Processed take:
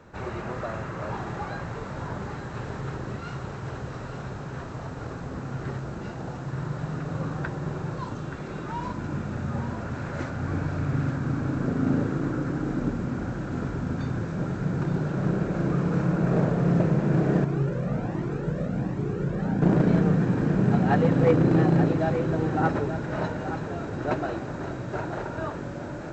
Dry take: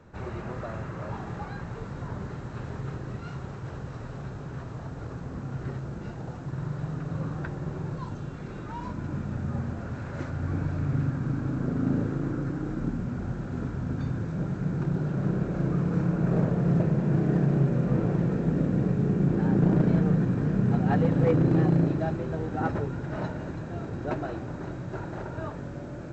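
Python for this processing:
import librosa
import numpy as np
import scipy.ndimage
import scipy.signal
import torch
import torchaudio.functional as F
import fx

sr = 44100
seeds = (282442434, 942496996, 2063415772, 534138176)

y = fx.low_shelf(x, sr, hz=280.0, db=-6.5)
y = y + 10.0 ** (-9.0 / 20.0) * np.pad(y, (int(877 * sr / 1000.0), 0))[:len(y)]
y = fx.comb_cascade(y, sr, direction='rising', hz=1.3, at=(17.44, 19.62))
y = y * 10.0 ** (5.5 / 20.0)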